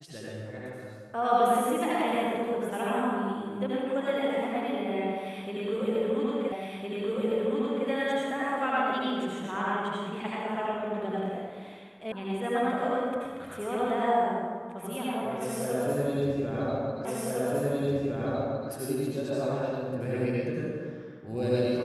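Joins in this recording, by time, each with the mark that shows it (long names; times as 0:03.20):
0:06.52: the same again, the last 1.36 s
0:12.12: cut off before it has died away
0:17.05: the same again, the last 1.66 s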